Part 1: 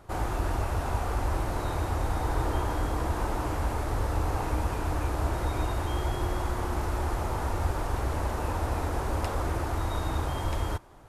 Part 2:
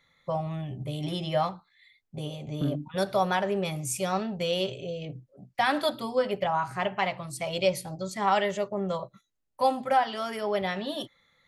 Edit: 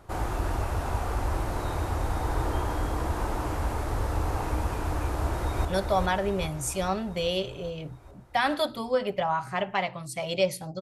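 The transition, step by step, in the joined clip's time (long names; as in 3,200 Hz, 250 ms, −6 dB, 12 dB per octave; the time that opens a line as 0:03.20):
part 1
0:05.16–0:05.65: delay throw 410 ms, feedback 65%, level −4.5 dB
0:05.65: continue with part 2 from 0:02.89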